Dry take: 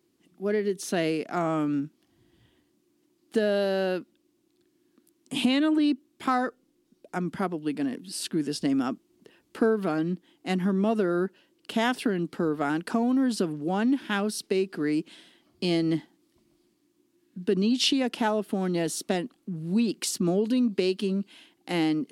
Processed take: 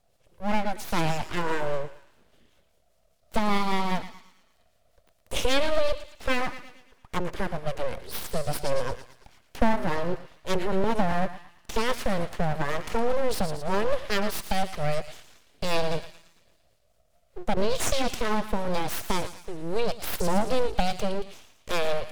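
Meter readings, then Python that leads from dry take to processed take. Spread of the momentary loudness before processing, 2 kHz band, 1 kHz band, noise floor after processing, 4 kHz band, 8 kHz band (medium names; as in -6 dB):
9 LU, +2.0 dB, +4.0 dB, -65 dBFS, -1.0 dB, 0.0 dB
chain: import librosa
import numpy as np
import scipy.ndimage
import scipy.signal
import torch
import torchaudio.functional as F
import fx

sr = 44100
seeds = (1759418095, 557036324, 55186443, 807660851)

y = fx.rotary(x, sr, hz=5.0)
y = fx.echo_thinned(y, sr, ms=113, feedback_pct=55, hz=570.0, wet_db=-10)
y = np.abs(y)
y = y * 10.0 ** (5.0 / 20.0)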